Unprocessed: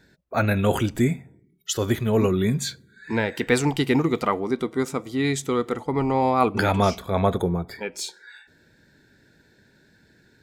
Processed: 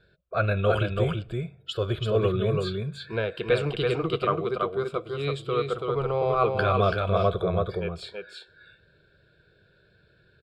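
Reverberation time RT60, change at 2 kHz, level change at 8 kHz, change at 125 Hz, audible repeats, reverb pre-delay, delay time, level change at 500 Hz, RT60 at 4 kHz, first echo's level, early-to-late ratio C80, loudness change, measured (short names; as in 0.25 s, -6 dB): none, -4.0 dB, under -20 dB, -1.5 dB, 1, none, 0.332 s, 0.0 dB, none, -3.5 dB, none, -3.0 dB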